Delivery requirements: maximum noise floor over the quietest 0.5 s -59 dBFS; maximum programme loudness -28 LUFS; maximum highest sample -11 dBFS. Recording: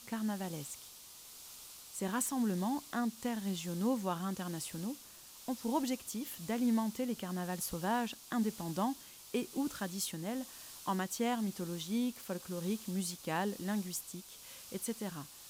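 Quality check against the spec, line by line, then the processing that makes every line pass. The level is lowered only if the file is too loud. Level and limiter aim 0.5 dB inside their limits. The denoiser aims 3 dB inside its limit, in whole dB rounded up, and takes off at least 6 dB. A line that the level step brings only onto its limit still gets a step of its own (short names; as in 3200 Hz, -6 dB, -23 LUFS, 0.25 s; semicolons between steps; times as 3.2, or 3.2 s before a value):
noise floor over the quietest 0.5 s -54 dBFS: fail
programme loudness -37.5 LUFS: OK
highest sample -20.5 dBFS: OK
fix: denoiser 8 dB, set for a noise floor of -54 dBFS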